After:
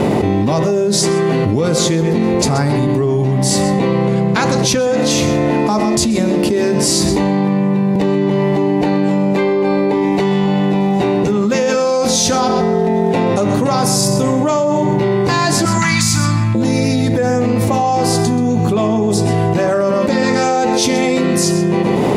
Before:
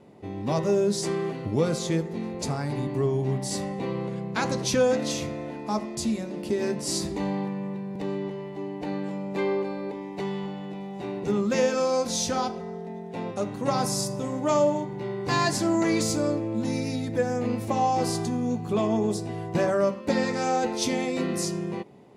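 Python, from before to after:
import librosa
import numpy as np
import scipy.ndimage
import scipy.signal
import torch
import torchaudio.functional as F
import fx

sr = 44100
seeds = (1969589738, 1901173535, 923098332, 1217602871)

y = fx.cheby1_bandstop(x, sr, low_hz=170.0, high_hz=1200.0, order=2, at=(15.65, 16.55))
y = y + 10.0 ** (-13.5 / 20.0) * np.pad(y, (int(129 * sr / 1000.0), 0))[:len(y)]
y = fx.env_flatten(y, sr, amount_pct=100)
y = F.gain(torch.from_numpy(y), 4.0).numpy()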